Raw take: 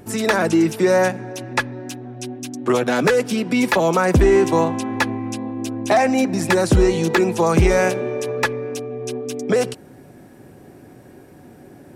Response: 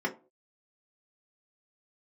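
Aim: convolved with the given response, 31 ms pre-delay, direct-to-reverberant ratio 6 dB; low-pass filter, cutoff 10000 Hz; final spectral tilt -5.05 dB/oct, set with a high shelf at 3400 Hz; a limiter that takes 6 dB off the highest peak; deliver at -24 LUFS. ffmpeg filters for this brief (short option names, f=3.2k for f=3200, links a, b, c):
-filter_complex "[0:a]lowpass=10k,highshelf=f=3.4k:g=4,alimiter=limit=-11.5dB:level=0:latency=1,asplit=2[a][b];[1:a]atrim=start_sample=2205,adelay=31[c];[b][c]afir=irnorm=-1:irlink=0,volume=-14dB[d];[a][d]amix=inputs=2:normalize=0,volume=-4dB"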